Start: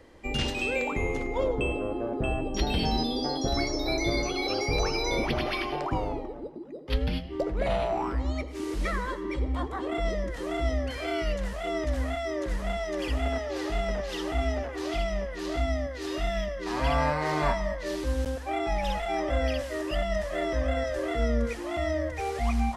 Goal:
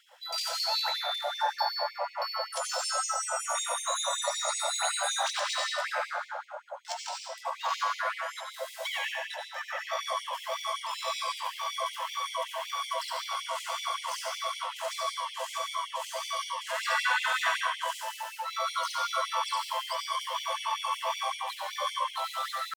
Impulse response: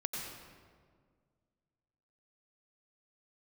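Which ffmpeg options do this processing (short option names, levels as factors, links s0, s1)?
-filter_complex "[0:a]asetrate=74167,aresample=44100,atempo=0.594604[s0];[1:a]atrim=start_sample=2205,asetrate=52920,aresample=44100[s1];[s0][s1]afir=irnorm=-1:irlink=0,afftfilt=real='re*gte(b*sr/1024,480*pow(2100/480,0.5+0.5*sin(2*PI*5.3*pts/sr)))':imag='im*gte(b*sr/1024,480*pow(2100/480,0.5+0.5*sin(2*PI*5.3*pts/sr)))':win_size=1024:overlap=0.75,volume=1.19"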